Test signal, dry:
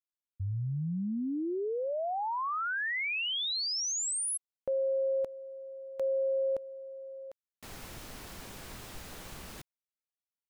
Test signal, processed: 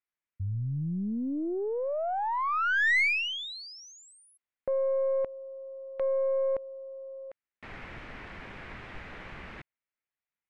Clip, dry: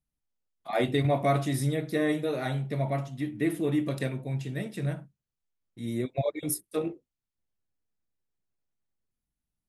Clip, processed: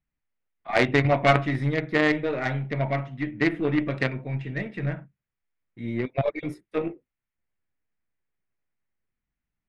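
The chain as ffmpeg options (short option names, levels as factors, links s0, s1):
-af "lowpass=f=2100:t=q:w=2.3,aeval=exprs='0.266*(cos(1*acos(clip(val(0)/0.266,-1,1)))-cos(1*PI/2))+0.0596*(cos(2*acos(clip(val(0)/0.266,-1,1)))-cos(2*PI/2))+0.0422*(cos(3*acos(clip(val(0)/0.266,-1,1)))-cos(3*PI/2))+0.00944*(cos(8*acos(clip(val(0)/0.266,-1,1)))-cos(8*PI/2))':c=same,volume=2.24"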